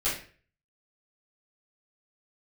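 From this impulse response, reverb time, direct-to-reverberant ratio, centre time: 0.45 s, −10.5 dB, 38 ms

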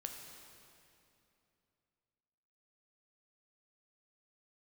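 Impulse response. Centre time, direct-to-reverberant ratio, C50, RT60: 72 ms, 2.5 dB, 4.0 dB, 2.8 s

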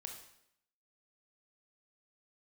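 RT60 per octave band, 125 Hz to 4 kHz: 0.75, 0.75, 0.75, 0.75, 0.75, 0.70 seconds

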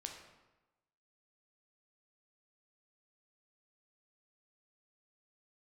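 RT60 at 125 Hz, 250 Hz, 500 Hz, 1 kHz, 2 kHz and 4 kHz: 1.1, 1.1, 1.1, 1.1, 0.95, 0.75 seconds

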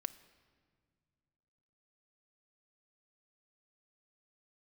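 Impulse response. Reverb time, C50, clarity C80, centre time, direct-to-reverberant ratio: non-exponential decay, 16.0 dB, 17.0 dB, 5 ms, 11.0 dB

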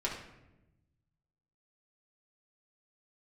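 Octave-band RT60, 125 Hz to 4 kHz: 1.9, 1.4, 1.1, 0.85, 0.80, 0.60 seconds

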